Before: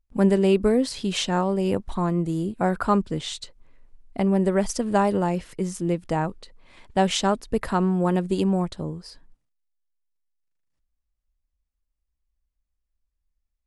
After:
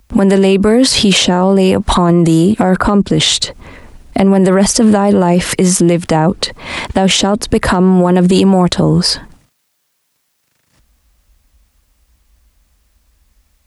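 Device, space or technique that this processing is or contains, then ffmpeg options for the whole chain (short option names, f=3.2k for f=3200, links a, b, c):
mastering chain: -filter_complex "[0:a]highpass=58,equalizer=f=400:t=o:w=0.77:g=-2,acrossover=split=230|710[a][b][c];[a]acompressor=threshold=-37dB:ratio=4[d];[b]acompressor=threshold=-31dB:ratio=4[e];[c]acompressor=threshold=-38dB:ratio=4[f];[d][e][f]amix=inputs=3:normalize=0,acompressor=threshold=-32dB:ratio=2,asoftclip=type=hard:threshold=-22dB,alimiter=level_in=33dB:limit=-1dB:release=50:level=0:latency=1,volume=-1dB"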